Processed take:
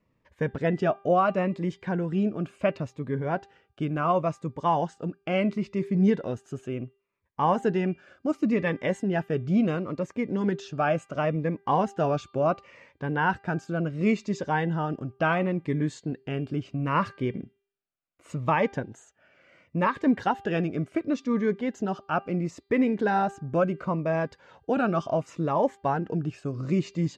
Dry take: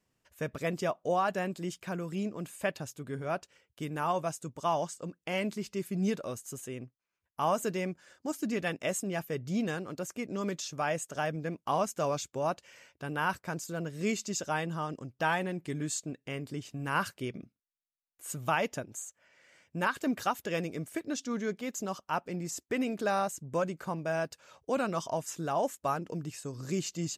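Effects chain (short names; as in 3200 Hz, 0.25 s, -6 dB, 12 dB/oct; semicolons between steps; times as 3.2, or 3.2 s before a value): LPF 2100 Hz 12 dB/oct; de-hum 396.7 Hz, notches 12; cascading phaser falling 0.71 Hz; gain +9 dB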